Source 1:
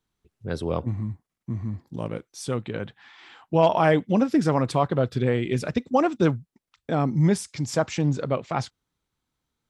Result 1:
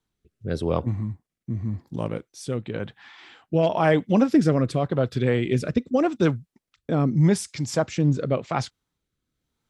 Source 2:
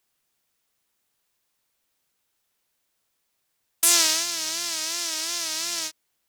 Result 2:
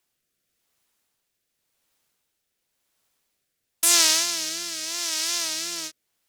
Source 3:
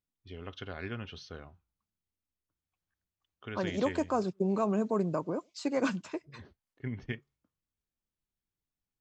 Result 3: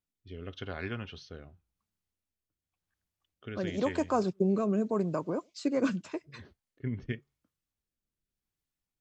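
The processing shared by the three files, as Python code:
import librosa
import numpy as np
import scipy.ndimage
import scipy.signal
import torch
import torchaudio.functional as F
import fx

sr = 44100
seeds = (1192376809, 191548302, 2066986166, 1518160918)

y = fx.rotary(x, sr, hz=0.9)
y = F.gain(torch.from_numpy(y), 3.0).numpy()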